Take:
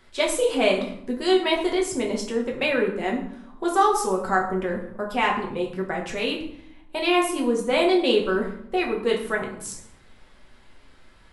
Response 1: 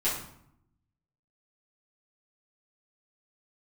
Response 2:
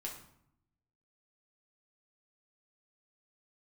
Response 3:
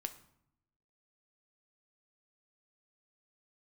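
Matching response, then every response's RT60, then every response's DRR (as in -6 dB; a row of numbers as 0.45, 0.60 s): 2; 0.70, 0.70, 0.75 s; -10.0, -1.5, 8.0 dB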